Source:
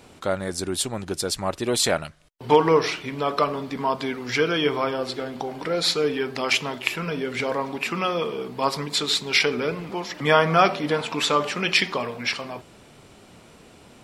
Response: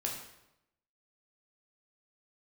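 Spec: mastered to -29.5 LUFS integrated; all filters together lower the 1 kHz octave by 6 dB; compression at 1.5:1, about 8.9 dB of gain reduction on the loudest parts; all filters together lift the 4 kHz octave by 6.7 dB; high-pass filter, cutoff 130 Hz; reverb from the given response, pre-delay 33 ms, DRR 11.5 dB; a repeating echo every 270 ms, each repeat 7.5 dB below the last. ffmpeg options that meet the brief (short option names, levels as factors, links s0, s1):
-filter_complex "[0:a]highpass=130,equalizer=f=1000:t=o:g=-8.5,equalizer=f=4000:t=o:g=8.5,acompressor=threshold=0.0141:ratio=1.5,aecho=1:1:270|540|810|1080|1350:0.422|0.177|0.0744|0.0312|0.0131,asplit=2[s0][s1];[1:a]atrim=start_sample=2205,adelay=33[s2];[s1][s2]afir=irnorm=-1:irlink=0,volume=0.2[s3];[s0][s3]amix=inputs=2:normalize=0,volume=0.841"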